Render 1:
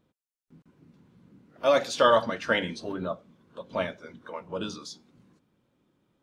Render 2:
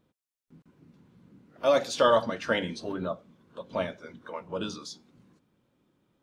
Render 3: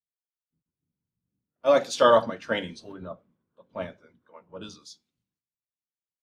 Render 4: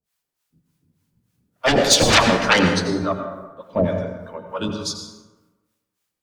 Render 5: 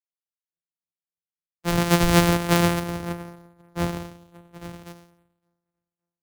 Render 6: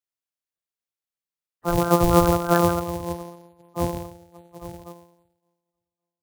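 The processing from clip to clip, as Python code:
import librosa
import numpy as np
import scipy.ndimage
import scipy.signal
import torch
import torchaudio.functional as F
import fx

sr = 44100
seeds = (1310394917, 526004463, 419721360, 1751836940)

y1 = fx.dynamic_eq(x, sr, hz=1900.0, q=0.72, threshold_db=-35.0, ratio=4.0, max_db=-4)
y2 = fx.band_widen(y1, sr, depth_pct=100)
y2 = y2 * 10.0 ** (-5.0 / 20.0)
y3 = fx.fold_sine(y2, sr, drive_db=17, ceiling_db=-6.0)
y3 = fx.harmonic_tremolo(y3, sr, hz=3.4, depth_pct=100, crossover_hz=640.0)
y3 = fx.rev_plate(y3, sr, seeds[0], rt60_s=1.2, hf_ratio=0.5, predelay_ms=75, drr_db=5.0)
y4 = np.r_[np.sort(y3[:len(y3) // 256 * 256].reshape(-1, 256), axis=1).ravel(), y3[len(y3) // 256 * 256:]]
y4 = fx.echo_feedback(y4, sr, ms=563, feedback_pct=53, wet_db=-21.0)
y4 = fx.band_widen(y4, sr, depth_pct=100)
y4 = y4 * 10.0 ** (-6.0 / 20.0)
y5 = fx.spec_quant(y4, sr, step_db=30)
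y5 = y5 * 10.0 ** (1.5 / 20.0)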